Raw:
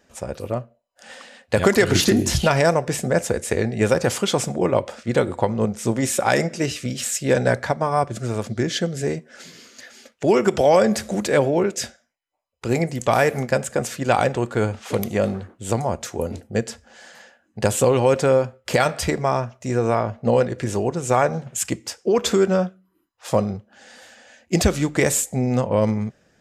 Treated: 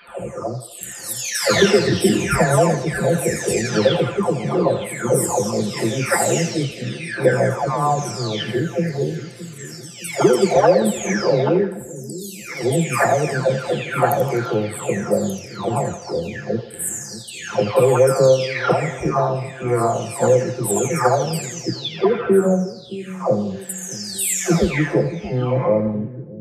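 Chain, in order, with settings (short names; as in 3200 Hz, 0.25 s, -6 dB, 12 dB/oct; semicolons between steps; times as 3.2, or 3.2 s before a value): spectral delay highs early, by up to 0.915 s; split-band echo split 360 Hz, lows 0.616 s, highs 84 ms, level -12 dB; gain +4 dB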